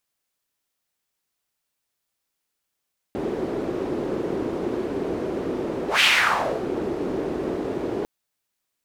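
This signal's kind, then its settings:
pass-by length 4.90 s, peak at 0:02.86, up 0.14 s, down 0.68 s, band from 370 Hz, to 2,700 Hz, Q 2.7, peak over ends 10.5 dB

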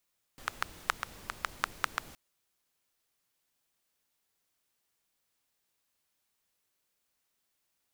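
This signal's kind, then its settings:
rain-like ticks over hiss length 1.77 s, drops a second 5.2, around 1,300 Hz, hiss −11.5 dB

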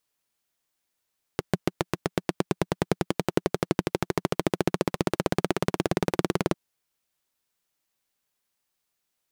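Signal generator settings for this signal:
pulse-train model of a single-cylinder engine, changing speed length 5.15 s, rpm 800, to 2,300, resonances 180/340 Hz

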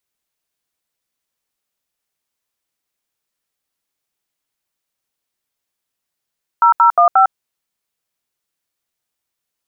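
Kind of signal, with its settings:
touch tones "0015", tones 104 ms, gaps 74 ms, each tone −9.5 dBFS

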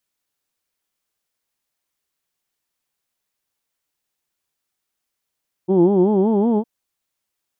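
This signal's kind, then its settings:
vowel from formants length 0.96 s, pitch 177 Hz, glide +4.5 semitones, vibrato depth 1.45 semitones, F1 340 Hz, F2 860 Hz, F3 3,200 Hz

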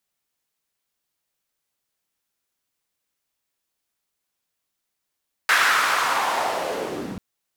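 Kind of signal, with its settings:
filter sweep on noise white, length 1.69 s bandpass, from 1,600 Hz, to 150 Hz, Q 2.6, linear, gain ramp −6.5 dB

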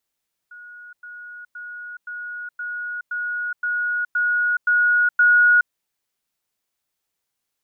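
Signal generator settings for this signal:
level staircase 1,450 Hz −38 dBFS, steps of 3 dB, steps 10, 0.42 s 0.10 s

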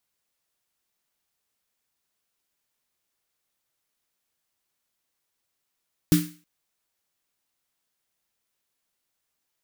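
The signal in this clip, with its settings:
synth snare length 0.32 s, tones 170 Hz, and 300 Hz, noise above 1,300 Hz, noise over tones −10 dB, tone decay 0.34 s, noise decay 0.40 s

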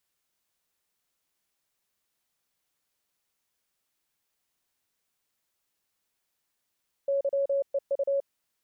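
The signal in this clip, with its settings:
Morse code "YEU" 29 words per minute 555 Hz −23 dBFS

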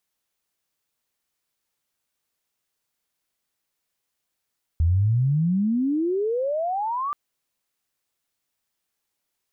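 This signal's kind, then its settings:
glide logarithmic 78 Hz → 1,200 Hz −16 dBFS → −24 dBFS 2.33 s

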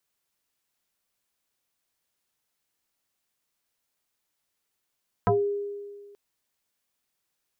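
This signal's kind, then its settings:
two-operator FM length 0.88 s, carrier 406 Hz, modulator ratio 0.73, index 3.4, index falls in 0.22 s exponential, decay 1.72 s, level −17 dB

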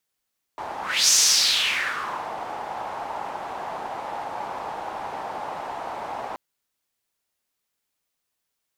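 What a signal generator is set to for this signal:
pass-by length 5.78 s, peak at 0:00.53, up 0.33 s, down 1.27 s, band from 830 Hz, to 6,200 Hz, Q 3.6, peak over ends 15.5 dB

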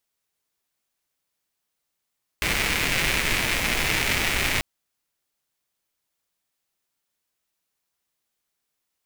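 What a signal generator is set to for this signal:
rain-like ticks over hiss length 2.19 s, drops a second 270, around 2,200 Hz, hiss −1.5 dB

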